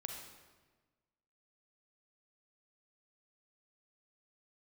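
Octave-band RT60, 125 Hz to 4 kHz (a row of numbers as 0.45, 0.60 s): 1.6, 1.5, 1.4, 1.3, 1.2, 1.0 s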